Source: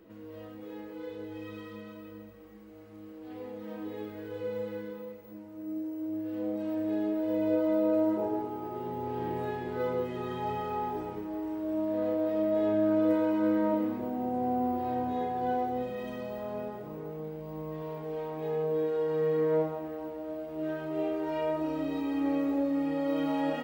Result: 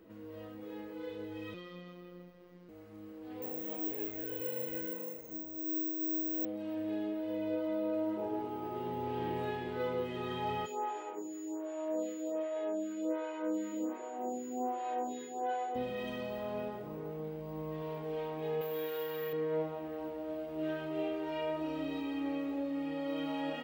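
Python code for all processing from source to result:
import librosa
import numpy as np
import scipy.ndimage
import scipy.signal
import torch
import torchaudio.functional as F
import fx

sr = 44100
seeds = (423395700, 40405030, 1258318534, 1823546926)

y = fx.chain(x, sr, fx.robotise(hz=177.0),
    fx.high_shelf_res(hz=6700.0, db=-7.0, q=1.5), at=(1.54, 2.69))
y = fx.chain(y, sr, fx.comb(ms=6.7, depth=0.85),
    fx.resample_bad(factor=2, down='none', up='zero_stuff'), at=(3.42, 6.45))
y = fx.highpass(y, sr, hz=280.0, slope=24, at=(10.65, 15.74), fade=0.02)
y = fx.dmg_tone(y, sr, hz=6900.0, level_db=-50.0, at=(10.65, 15.74), fade=0.02)
y = fx.stagger_phaser(y, sr, hz=1.3, at=(10.65, 15.74), fade=0.02)
y = fx.chain(y, sr, fx.resample_bad(factor=3, down='none', up='hold'),
    fx.tilt_shelf(db=-7.5, hz=910.0), at=(18.61, 19.33))
y = fx.dynamic_eq(y, sr, hz=3000.0, q=1.3, threshold_db=-58.0, ratio=4.0, max_db=8)
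y = fx.rider(y, sr, range_db=3, speed_s=0.5)
y = y * 10.0 ** (-5.0 / 20.0)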